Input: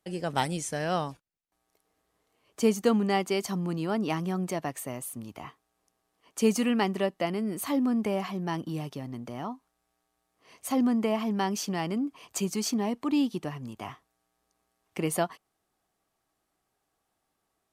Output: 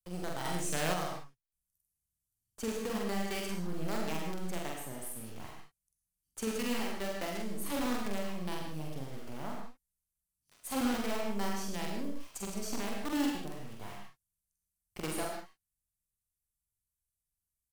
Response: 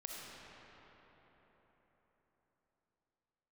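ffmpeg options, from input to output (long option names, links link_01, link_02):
-filter_complex "[0:a]acrossover=split=130|7000[link_01][link_02][link_03];[link_02]acrusher=bits=5:dc=4:mix=0:aa=0.000001[link_04];[link_01][link_04][link_03]amix=inputs=3:normalize=0,alimiter=limit=-22.5dB:level=0:latency=1:release=419,asplit=2[link_05][link_06];[link_06]adelay=45,volume=-3dB[link_07];[link_05][link_07]amix=inputs=2:normalize=0[link_08];[1:a]atrim=start_sample=2205,afade=type=out:start_time=0.21:duration=0.01,atrim=end_sample=9702[link_09];[link_08][link_09]afir=irnorm=-1:irlink=0,asplit=3[link_10][link_11][link_12];[link_10]afade=type=out:start_time=0.44:duration=0.02[link_13];[link_11]acontrast=56,afade=type=in:start_time=0.44:duration=0.02,afade=type=out:start_time=0.92:duration=0.02[link_14];[link_12]afade=type=in:start_time=0.92:duration=0.02[link_15];[link_13][link_14][link_15]amix=inputs=3:normalize=0"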